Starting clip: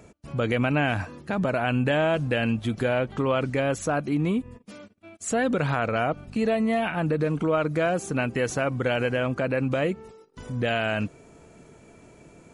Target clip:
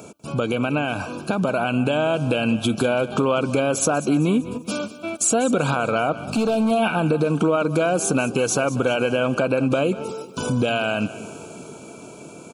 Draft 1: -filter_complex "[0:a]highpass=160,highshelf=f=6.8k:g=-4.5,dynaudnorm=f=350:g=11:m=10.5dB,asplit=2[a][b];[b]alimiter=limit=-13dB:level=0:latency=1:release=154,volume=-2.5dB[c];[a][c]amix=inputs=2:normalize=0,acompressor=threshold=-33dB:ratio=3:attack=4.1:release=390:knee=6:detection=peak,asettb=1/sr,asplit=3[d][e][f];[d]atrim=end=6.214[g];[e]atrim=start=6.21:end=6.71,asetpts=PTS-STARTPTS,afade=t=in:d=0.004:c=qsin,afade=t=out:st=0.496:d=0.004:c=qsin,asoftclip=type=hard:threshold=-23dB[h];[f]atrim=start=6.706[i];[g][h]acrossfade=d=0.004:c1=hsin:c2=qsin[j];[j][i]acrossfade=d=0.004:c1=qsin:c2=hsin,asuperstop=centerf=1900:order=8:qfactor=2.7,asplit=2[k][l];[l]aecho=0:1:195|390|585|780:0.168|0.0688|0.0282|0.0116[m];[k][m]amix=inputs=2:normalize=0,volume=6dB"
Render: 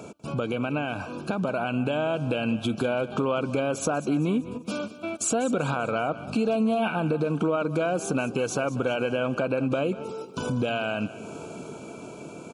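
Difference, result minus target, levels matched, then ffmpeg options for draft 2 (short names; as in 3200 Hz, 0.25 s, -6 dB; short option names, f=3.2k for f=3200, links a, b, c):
compressor: peak gain reduction +5.5 dB; 8000 Hz band -3.5 dB
-filter_complex "[0:a]highpass=160,highshelf=f=6.8k:g=7,dynaudnorm=f=350:g=11:m=10.5dB,asplit=2[a][b];[b]alimiter=limit=-13dB:level=0:latency=1:release=154,volume=-2.5dB[c];[a][c]amix=inputs=2:normalize=0,acompressor=threshold=-24.5dB:ratio=3:attack=4.1:release=390:knee=6:detection=peak,asettb=1/sr,asplit=3[d][e][f];[d]atrim=end=6.214[g];[e]atrim=start=6.21:end=6.71,asetpts=PTS-STARTPTS,afade=t=in:d=0.004:c=qsin,afade=t=out:st=0.496:d=0.004:c=qsin,asoftclip=type=hard:threshold=-23dB[h];[f]atrim=start=6.706[i];[g][h]acrossfade=d=0.004:c1=hsin:c2=qsin[j];[j][i]acrossfade=d=0.004:c1=qsin:c2=hsin,asuperstop=centerf=1900:order=8:qfactor=2.7,asplit=2[k][l];[l]aecho=0:1:195|390|585|780:0.168|0.0688|0.0282|0.0116[m];[k][m]amix=inputs=2:normalize=0,volume=6dB"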